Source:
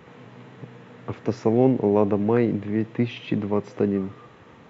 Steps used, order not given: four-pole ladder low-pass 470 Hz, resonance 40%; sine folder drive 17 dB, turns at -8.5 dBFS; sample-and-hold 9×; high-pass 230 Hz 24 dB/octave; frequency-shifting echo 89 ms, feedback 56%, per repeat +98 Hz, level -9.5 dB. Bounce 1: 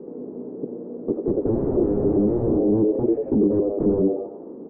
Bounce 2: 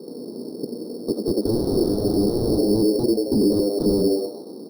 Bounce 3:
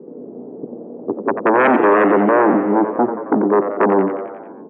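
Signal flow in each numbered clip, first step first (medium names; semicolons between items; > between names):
high-pass > sample-and-hold > frequency-shifting echo > sine folder > four-pole ladder low-pass; frequency-shifting echo > high-pass > sine folder > four-pole ladder low-pass > sample-and-hold; sample-and-hold > four-pole ladder low-pass > sine folder > frequency-shifting echo > high-pass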